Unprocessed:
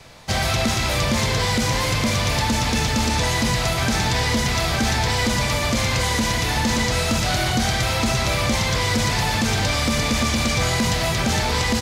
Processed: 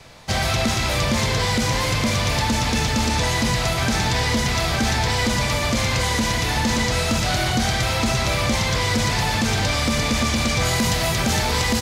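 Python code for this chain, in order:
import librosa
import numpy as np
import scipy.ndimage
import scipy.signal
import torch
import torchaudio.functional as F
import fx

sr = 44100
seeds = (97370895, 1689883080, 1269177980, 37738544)

y = fx.high_shelf(x, sr, hz=11000.0, db=fx.steps((0.0, -2.5), (10.64, 7.5)))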